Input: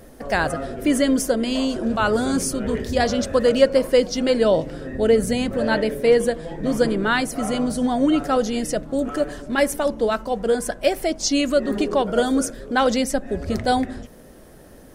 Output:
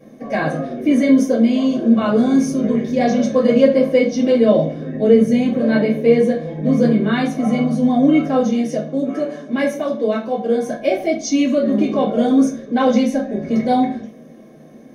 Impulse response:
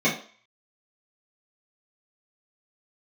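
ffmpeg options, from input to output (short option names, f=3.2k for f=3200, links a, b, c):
-filter_complex "[0:a]asettb=1/sr,asplit=3[a][b][c];[a]atrim=end=8.454[d];[b]atrim=start=8.45:end=10.68,asetpts=PTS-STARTPTS,afade=t=in:d=0.004:c=qsin,afade=t=out:st=2.226:d=0.004:c=qsin,highpass=f=220:p=1[e];[c]atrim=start=10.676[f];[d][e]acrossfade=d=0.004:c1=hsin:c2=qsin[g];[g][f]acrossfade=d=0.004:c1=qsin:c2=hsin[h];[1:a]atrim=start_sample=2205[i];[h][i]afir=irnorm=-1:irlink=0,volume=-15.5dB"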